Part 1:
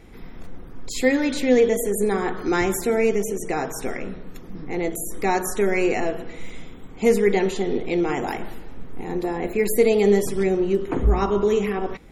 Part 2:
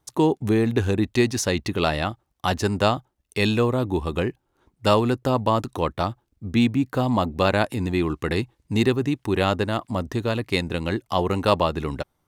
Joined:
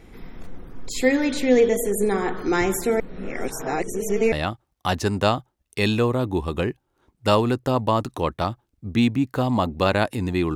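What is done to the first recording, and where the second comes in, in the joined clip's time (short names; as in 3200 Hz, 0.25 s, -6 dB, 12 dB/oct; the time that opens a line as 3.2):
part 1
3–4.32 reverse
4.32 switch to part 2 from 1.91 s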